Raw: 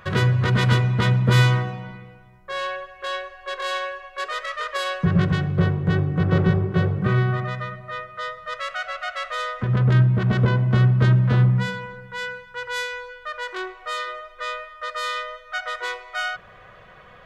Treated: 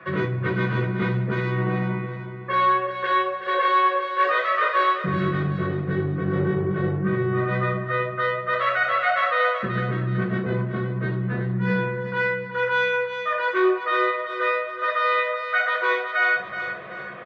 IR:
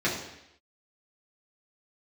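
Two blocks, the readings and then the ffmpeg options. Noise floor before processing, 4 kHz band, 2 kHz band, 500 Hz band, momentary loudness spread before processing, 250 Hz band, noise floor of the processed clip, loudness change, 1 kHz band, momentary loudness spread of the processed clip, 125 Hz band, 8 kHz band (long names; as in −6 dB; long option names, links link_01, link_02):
−47 dBFS, −4.5 dB, +4.5 dB, +5.0 dB, 14 LU, −1.0 dB, −34 dBFS, −0.5 dB, +7.0 dB, 6 LU, −7.5 dB, can't be measured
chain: -filter_complex "[1:a]atrim=start_sample=2205,atrim=end_sample=3969[link_01];[0:a][link_01]afir=irnorm=-1:irlink=0,areverse,acompressor=threshold=-13dB:ratio=16,areverse,aecho=1:1:374|748|1122|1496:0.316|0.126|0.0506|0.0202,acrossover=split=3800[link_02][link_03];[link_03]acompressor=threshold=-36dB:ratio=4:attack=1:release=60[link_04];[link_02][link_04]amix=inputs=2:normalize=0,acrossover=split=200 3100:gain=0.224 1 0.0794[link_05][link_06][link_07];[link_05][link_06][link_07]amix=inputs=3:normalize=0,volume=-1.5dB"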